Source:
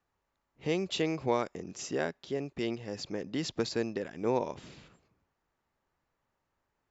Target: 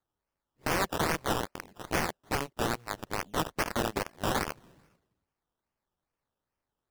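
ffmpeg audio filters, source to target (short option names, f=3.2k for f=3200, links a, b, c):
-af "acrusher=samples=16:mix=1:aa=0.000001:lfo=1:lforange=9.6:lforate=2.4,aeval=exprs='(mod(25.1*val(0)+1,2)-1)/25.1':c=same,aeval=exprs='0.0422*(cos(1*acos(clip(val(0)/0.0422,-1,1)))-cos(1*PI/2))+0.0168*(cos(3*acos(clip(val(0)/0.0422,-1,1)))-cos(3*PI/2))+0.000266*(cos(6*acos(clip(val(0)/0.0422,-1,1)))-cos(6*PI/2))+0.000531*(cos(8*acos(clip(val(0)/0.0422,-1,1)))-cos(8*PI/2))':c=same,volume=7.5dB"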